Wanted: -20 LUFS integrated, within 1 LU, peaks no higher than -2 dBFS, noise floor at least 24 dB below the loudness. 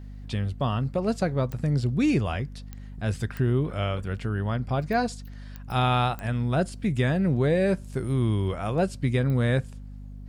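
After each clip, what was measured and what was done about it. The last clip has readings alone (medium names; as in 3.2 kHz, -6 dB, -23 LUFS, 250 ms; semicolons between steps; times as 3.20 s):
clicks found 6; hum 50 Hz; highest harmonic 250 Hz; hum level -36 dBFS; loudness -26.5 LUFS; peak level -12.0 dBFS; loudness target -20.0 LUFS
-> de-click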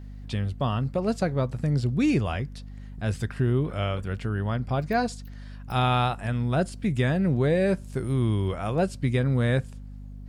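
clicks found 0; hum 50 Hz; highest harmonic 250 Hz; hum level -36 dBFS
-> de-hum 50 Hz, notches 5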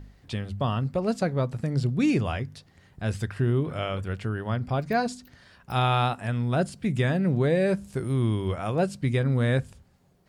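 hum not found; loudness -27.0 LUFS; peak level -12.0 dBFS; loudness target -20.0 LUFS
-> trim +7 dB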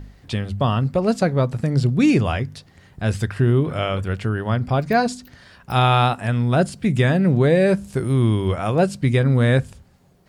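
loudness -20.0 LUFS; peak level -5.0 dBFS; noise floor -53 dBFS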